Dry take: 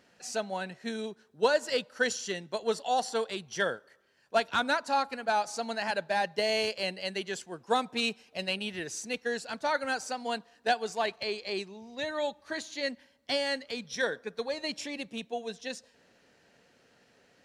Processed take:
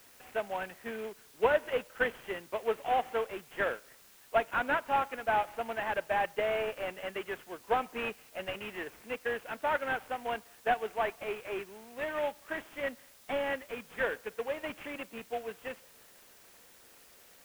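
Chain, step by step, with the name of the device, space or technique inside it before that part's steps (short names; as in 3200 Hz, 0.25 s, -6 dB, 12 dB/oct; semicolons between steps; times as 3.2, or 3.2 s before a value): army field radio (BPF 330–3100 Hz; CVSD 16 kbps; white noise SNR 24 dB)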